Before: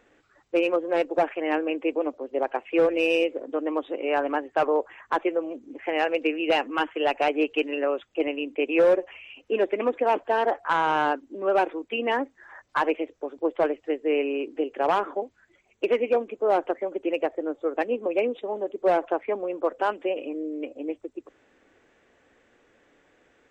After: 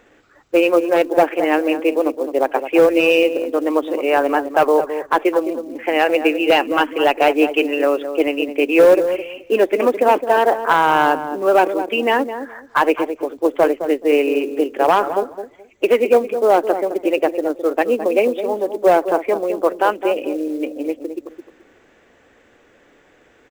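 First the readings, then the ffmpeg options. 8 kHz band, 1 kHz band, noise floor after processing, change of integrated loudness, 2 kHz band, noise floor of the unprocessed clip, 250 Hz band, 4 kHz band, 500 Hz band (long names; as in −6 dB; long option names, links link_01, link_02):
can't be measured, +9.0 dB, −53 dBFS, +9.0 dB, +8.5 dB, −64 dBFS, +9.0 dB, +8.5 dB, +9.0 dB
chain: -filter_complex "[0:a]asplit=2[link_01][link_02];[link_02]adelay=213,lowpass=frequency=800:poles=1,volume=-8dB,asplit=2[link_03][link_04];[link_04]adelay=213,lowpass=frequency=800:poles=1,volume=0.22,asplit=2[link_05][link_06];[link_06]adelay=213,lowpass=frequency=800:poles=1,volume=0.22[link_07];[link_01][link_03][link_05][link_07]amix=inputs=4:normalize=0,acrusher=bits=7:mode=log:mix=0:aa=0.000001,volume=8.5dB"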